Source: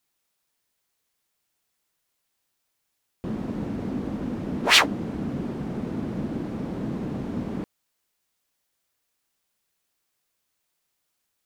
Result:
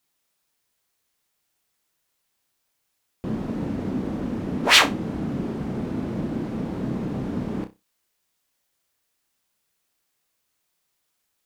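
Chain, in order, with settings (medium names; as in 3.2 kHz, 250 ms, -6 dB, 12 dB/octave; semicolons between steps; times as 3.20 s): flutter echo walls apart 5.4 m, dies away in 0.22 s; trim +1.5 dB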